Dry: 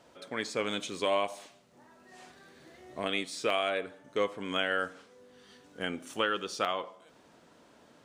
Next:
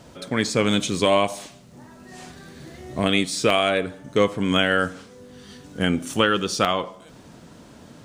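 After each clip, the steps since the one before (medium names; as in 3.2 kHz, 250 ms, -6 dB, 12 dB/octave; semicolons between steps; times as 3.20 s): tone controls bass +14 dB, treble +5 dB; trim +9 dB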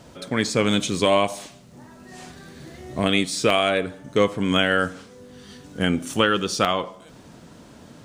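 no audible change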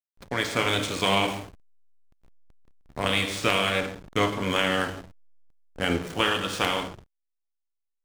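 spectral peaks clipped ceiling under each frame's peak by 16 dB; two-slope reverb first 0.89 s, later 2.5 s, DRR 3 dB; hysteresis with a dead band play -22.5 dBFS; trim -5 dB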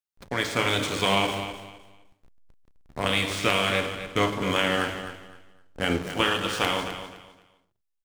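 feedback delay 257 ms, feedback 24%, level -11 dB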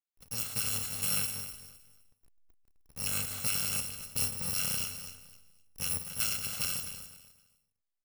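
bit-reversed sample order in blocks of 128 samples; trim -8 dB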